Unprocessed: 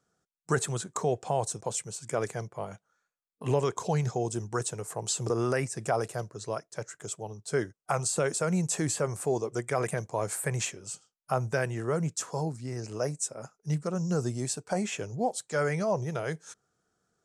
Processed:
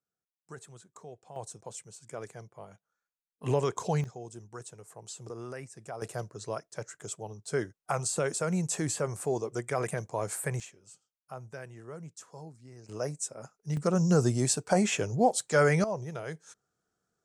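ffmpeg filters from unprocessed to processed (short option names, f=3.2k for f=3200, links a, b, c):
-af "asetnsamples=n=441:p=0,asendcmd='1.36 volume volume -10.5dB;3.43 volume volume -1dB;4.04 volume volume -13dB;6.02 volume volume -2dB;10.6 volume volume -14.5dB;12.89 volume volume -3dB;13.77 volume volume 5dB;15.84 volume volume -5.5dB',volume=-19dB"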